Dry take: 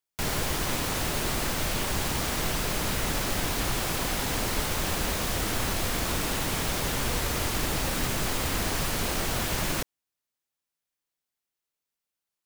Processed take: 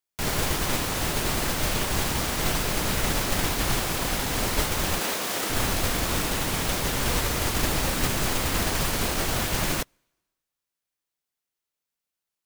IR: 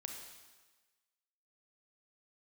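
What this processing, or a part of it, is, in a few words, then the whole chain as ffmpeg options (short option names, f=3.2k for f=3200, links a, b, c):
keyed gated reverb: -filter_complex "[0:a]asplit=3[a][b][c];[1:a]atrim=start_sample=2205[d];[b][d]afir=irnorm=-1:irlink=0[e];[c]apad=whole_len=549053[f];[e][f]sidechaingate=range=-32dB:threshold=-26dB:ratio=16:detection=peak,volume=2.5dB[g];[a][g]amix=inputs=2:normalize=0,asettb=1/sr,asplit=3[h][i][j];[h]atrim=end=4.994[k];[i]atrim=start=4.99:end=5.5,asetpts=PTS-STARTPTS,afade=t=in:d=0.004:c=qsin,afade=t=out:st=0.506:d=0.004:c=qsin,highpass=280[l];[j]atrim=start=5.496[m];[k][l]acrossfade=d=0.004:c1=hsin:c2=qsin[n];[n][m]acrossfade=d=0.004:c1=qsin:c2=hsin"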